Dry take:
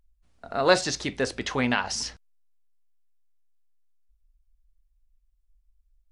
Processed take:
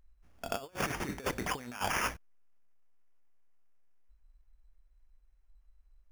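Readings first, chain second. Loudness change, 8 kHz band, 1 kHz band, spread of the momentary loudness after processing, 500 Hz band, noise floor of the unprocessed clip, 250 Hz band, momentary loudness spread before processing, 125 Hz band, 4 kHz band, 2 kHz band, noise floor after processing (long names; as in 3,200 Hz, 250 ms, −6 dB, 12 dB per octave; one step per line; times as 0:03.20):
−9.5 dB, −8.5 dB, −6.5 dB, 8 LU, −13.5 dB, −68 dBFS, −11.0 dB, 10 LU, −7.0 dB, −11.5 dB, −8.0 dB, −66 dBFS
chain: sample-rate reduction 4,000 Hz, jitter 0%
compressor whose output falls as the input rises −32 dBFS, ratio −0.5
level −3.5 dB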